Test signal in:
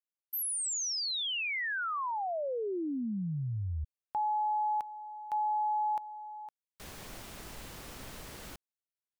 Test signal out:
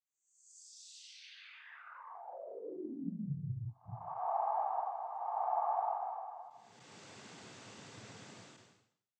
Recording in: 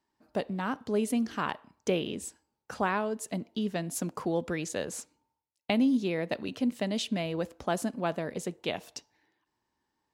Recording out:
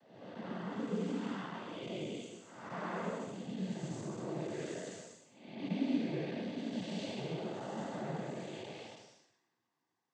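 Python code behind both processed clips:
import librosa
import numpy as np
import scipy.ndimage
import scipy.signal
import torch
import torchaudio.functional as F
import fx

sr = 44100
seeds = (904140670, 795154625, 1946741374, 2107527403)

y = fx.spec_blur(x, sr, span_ms=431.0)
y = fx.noise_vocoder(y, sr, seeds[0], bands=16)
y = y * librosa.db_to_amplitude(-2.5)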